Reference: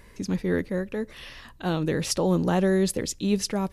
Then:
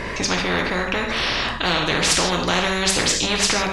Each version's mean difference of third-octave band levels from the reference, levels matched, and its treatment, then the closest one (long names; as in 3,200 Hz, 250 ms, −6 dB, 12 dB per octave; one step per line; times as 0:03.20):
12.0 dB: reverb whose tail is shaped and stops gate 180 ms falling, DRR 2 dB
in parallel at −9 dB: soft clipping −25 dBFS, distortion −7 dB
on the sum: high-frequency loss of the air 130 metres
every bin compressed towards the loudest bin 4 to 1
level +4 dB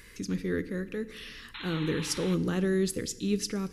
4.0 dB: flat-topped bell 760 Hz −12 dB 1 octave
sound drawn into the spectrogram noise, 0:01.54–0:02.35, 810–4,200 Hz −39 dBFS
feedback delay network reverb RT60 1.1 s, low-frequency decay 1.55×, high-frequency decay 0.85×, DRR 14 dB
one half of a high-frequency compander encoder only
level −4.5 dB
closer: second